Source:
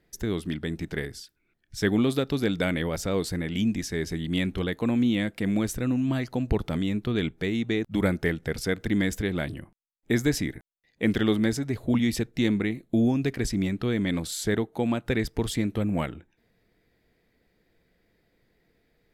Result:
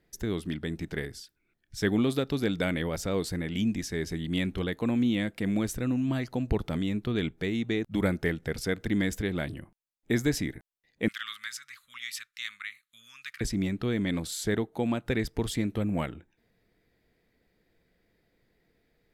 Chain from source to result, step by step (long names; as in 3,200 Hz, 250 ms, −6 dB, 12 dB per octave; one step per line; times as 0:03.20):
0:11.08–0:13.41: elliptic high-pass filter 1,200 Hz, stop band 40 dB
level −2.5 dB